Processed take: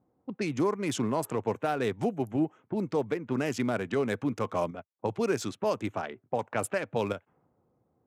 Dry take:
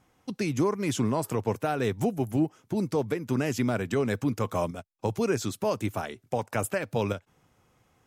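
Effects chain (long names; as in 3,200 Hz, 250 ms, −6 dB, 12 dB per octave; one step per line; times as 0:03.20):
adaptive Wiener filter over 9 samples
low-pass that shuts in the quiet parts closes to 530 Hz, open at −23.5 dBFS
high-pass filter 220 Hz 6 dB per octave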